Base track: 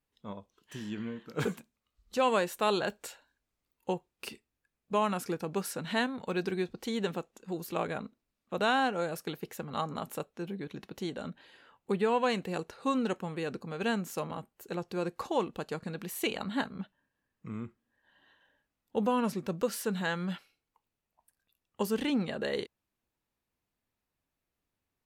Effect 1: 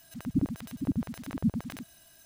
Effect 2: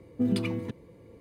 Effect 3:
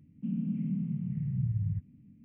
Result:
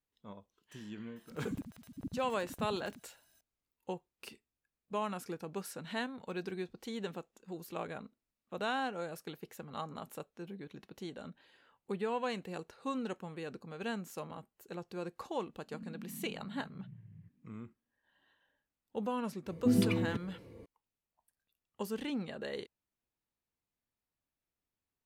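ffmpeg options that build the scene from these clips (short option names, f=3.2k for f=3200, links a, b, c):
-filter_complex "[0:a]volume=-7.5dB[a];[3:a]highpass=280[b];[1:a]atrim=end=2.25,asetpts=PTS-STARTPTS,volume=-13dB,afade=t=in:d=0.004:c=hsin,afade=t=out:st=2.246:d=0.004:c=hsin,adelay=1160[c];[b]atrim=end=2.24,asetpts=PTS-STARTPTS,volume=-8.5dB,afade=t=in:d=0.004:c=hsin,afade=t=out:st=2.236:d=0.004:c=hsin,adelay=15490[d];[2:a]atrim=end=1.2,asetpts=PTS-STARTPTS,volume=-1dB,afade=t=in:d=0.004:c=hsin,afade=t=out:st=1.196:d=0.004:c=hsin,adelay=19460[e];[a][c][d][e]amix=inputs=4:normalize=0"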